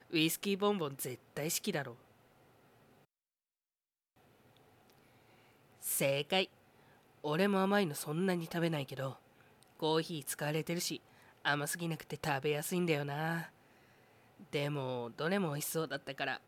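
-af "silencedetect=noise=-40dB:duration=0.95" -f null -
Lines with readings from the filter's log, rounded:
silence_start: 1.91
silence_end: 5.84 | silence_duration: 3.93
silence_start: 13.45
silence_end: 14.53 | silence_duration: 1.08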